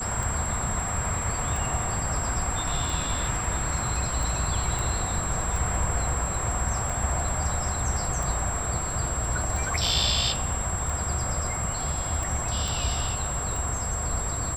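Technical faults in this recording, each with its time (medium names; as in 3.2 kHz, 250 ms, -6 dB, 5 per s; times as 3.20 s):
tick 45 rpm
whine 7.6 kHz -31 dBFS
4.79 s: pop
12.68 s: pop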